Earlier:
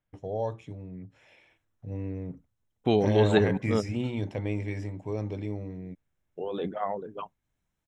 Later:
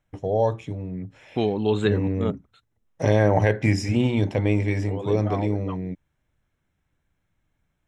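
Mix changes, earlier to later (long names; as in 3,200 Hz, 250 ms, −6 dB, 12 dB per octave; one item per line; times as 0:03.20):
first voice +9.5 dB
second voice: entry −1.50 s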